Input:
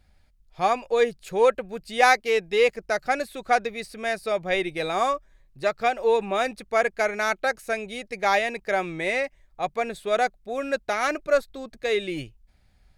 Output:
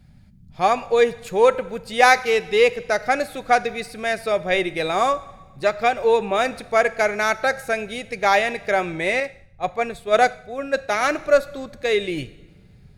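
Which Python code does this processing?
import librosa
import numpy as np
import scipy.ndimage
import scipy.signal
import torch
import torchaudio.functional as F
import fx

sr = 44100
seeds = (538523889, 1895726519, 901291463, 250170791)

y = fx.rev_double_slope(x, sr, seeds[0], early_s=0.99, late_s=3.1, knee_db=-21, drr_db=15.0)
y = fx.dmg_noise_band(y, sr, seeds[1], low_hz=64.0, high_hz=200.0, level_db=-55.0)
y = fx.band_widen(y, sr, depth_pct=100, at=(9.2, 11.01))
y = y * librosa.db_to_amplitude(4.0)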